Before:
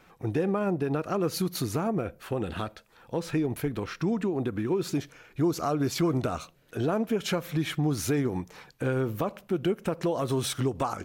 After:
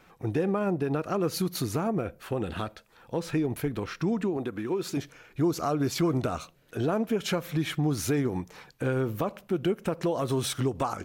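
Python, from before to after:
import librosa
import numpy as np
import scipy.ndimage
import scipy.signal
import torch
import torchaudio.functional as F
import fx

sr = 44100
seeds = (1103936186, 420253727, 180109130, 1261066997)

y = fx.low_shelf(x, sr, hz=170.0, db=-11.0, at=(4.37, 4.97))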